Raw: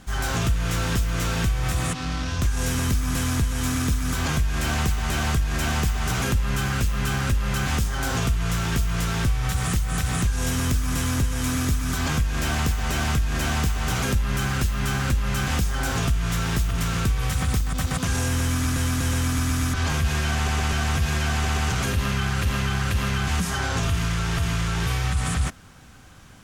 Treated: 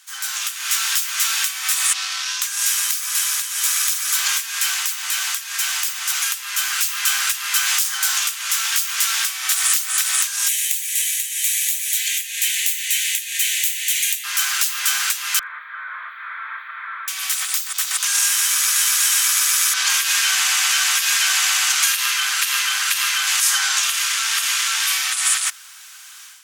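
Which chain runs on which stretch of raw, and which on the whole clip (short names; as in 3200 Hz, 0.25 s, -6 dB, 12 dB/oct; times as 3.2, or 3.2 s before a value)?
10.48–14.24 steep high-pass 1800 Hz 72 dB/oct + bell 5100 Hz -10.5 dB 0.39 oct
15.39–17.08 delta modulation 16 kbps, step -37 dBFS + fixed phaser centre 770 Hz, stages 6 + flutter echo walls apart 6.7 m, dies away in 0.24 s
whole clip: Bessel high-pass 1600 Hz, order 8; tilt +3 dB/oct; AGC; gain -1.5 dB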